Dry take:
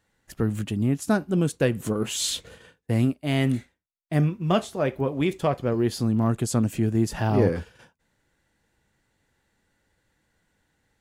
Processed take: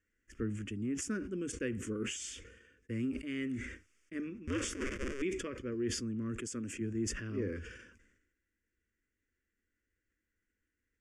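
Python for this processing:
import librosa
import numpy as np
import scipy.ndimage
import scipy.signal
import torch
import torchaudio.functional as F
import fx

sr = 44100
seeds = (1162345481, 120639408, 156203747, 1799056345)

y = fx.cycle_switch(x, sr, every=2, mode='inverted', at=(4.47, 5.22))
y = fx.rider(y, sr, range_db=10, speed_s=0.5)
y = scipy.signal.sosfilt(scipy.signal.butter(4, 7100.0, 'lowpass', fs=sr, output='sos'), y)
y = fx.fixed_phaser(y, sr, hz=360.0, stages=4)
y = fx.low_shelf(y, sr, hz=140.0, db=-10.5, at=(6.41, 6.81))
y = fx.fixed_phaser(y, sr, hz=1700.0, stages=4)
y = fx.sustainer(y, sr, db_per_s=55.0)
y = y * 10.0 ** (-7.5 / 20.0)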